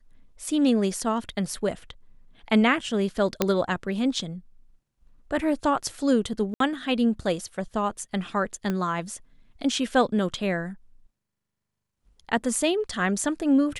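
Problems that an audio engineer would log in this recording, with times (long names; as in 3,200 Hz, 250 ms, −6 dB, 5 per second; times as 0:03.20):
0:03.42: click −6 dBFS
0:06.54–0:06.60: drop-out 63 ms
0:08.70: click −15 dBFS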